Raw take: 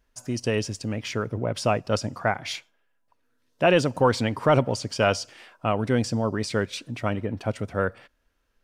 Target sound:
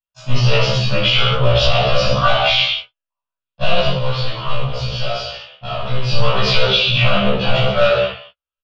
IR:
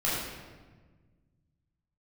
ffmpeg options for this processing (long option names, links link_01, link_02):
-filter_complex "[0:a]highshelf=frequency=2800:gain=-10.5,aeval=exprs='(tanh(10*val(0)+0.75)-tanh(0.75))/10':channel_layout=same,agate=range=-43dB:threshold=-51dB:ratio=16:detection=peak,asplit=2[link_01][link_02];[link_02]highpass=frequency=720:poles=1,volume=26dB,asoftclip=type=tanh:threshold=-15.5dB[link_03];[link_01][link_03]amix=inputs=2:normalize=0,lowpass=frequency=2800:poles=1,volume=-6dB,firequalizer=gain_entry='entry(140,0);entry(270,-24);entry(580,-2);entry(850,-11);entry(1200,2);entry(1800,-13);entry(2900,9);entry(4600,3);entry(7300,-17);entry(10000,-29)':delay=0.05:min_phase=1,asettb=1/sr,asplit=3[link_04][link_05][link_06];[link_04]atrim=end=3.754[link_07];[link_05]atrim=start=3.75:end=6.09,asetpts=PTS-STARTPTS,afade=type=in:duration=0.004:curve=qsin,afade=type=out:start_time=2.336:duration=0.004:curve=qsin,acompressor=threshold=-39dB:ratio=4[link_08];[link_06]atrim=start=6.086[link_09];[link_07][link_08]acrossfade=duration=0.004:curve1=hsin:curve2=qsin[link_10];[link_10][link_09]acrossfade=duration=0.004:curve1=qsin:curve2=hsin[link_11];[1:a]atrim=start_sample=2205,afade=type=out:start_time=0.38:duration=0.01,atrim=end_sample=17199,asetrate=57330,aresample=44100[link_12];[link_11][link_12]afir=irnorm=-1:irlink=0,alimiter=level_in=12dB:limit=-1dB:release=50:level=0:latency=1,afftfilt=real='re*1.73*eq(mod(b,3),0)':imag='im*1.73*eq(mod(b,3),0)':win_size=2048:overlap=0.75,volume=-1.5dB"